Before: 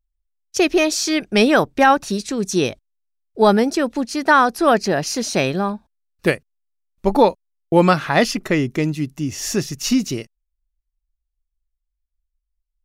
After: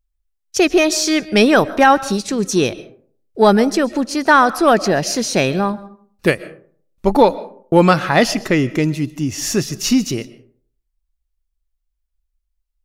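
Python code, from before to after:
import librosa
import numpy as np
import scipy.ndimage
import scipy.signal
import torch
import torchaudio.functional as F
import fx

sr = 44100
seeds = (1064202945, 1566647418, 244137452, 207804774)

p1 = 10.0 ** (-14.5 / 20.0) * np.tanh(x / 10.0 ** (-14.5 / 20.0))
p2 = x + (p1 * librosa.db_to_amplitude(-10.0))
p3 = fx.rev_freeverb(p2, sr, rt60_s=0.52, hf_ratio=0.45, predelay_ms=90, drr_db=17.5)
y = p3 * librosa.db_to_amplitude(1.0)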